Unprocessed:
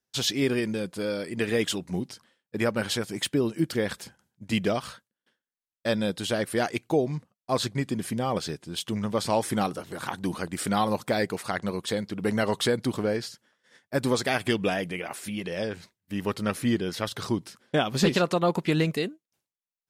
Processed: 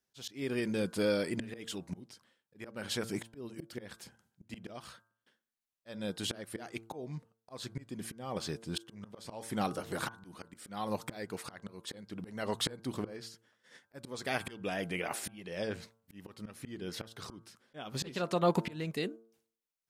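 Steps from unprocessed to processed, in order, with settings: auto swell 0.66 s; de-hum 113.1 Hz, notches 14

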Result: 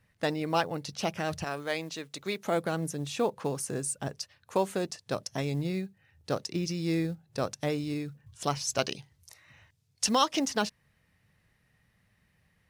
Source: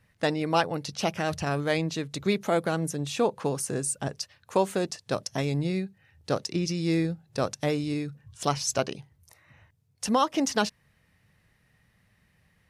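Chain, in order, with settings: 8.78–10.39 bell 5000 Hz +10.5 dB 2.5 oct; short-mantissa float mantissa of 4-bit; 1.44–2.45 HPF 510 Hz 6 dB/oct; gain -3.5 dB

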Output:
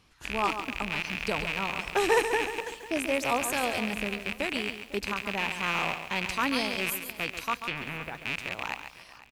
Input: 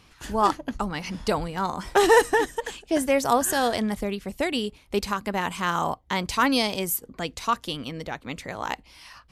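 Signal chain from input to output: rattling part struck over -40 dBFS, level -11 dBFS; 7.55–8.15 treble ducked by the level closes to 1600 Hz, closed at -20 dBFS; feedback echo 0.499 s, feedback 36%, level -18.5 dB; lo-fi delay 0.138 s, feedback 35%, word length 7-bit, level -8.5 dB; gain -7.5 dB

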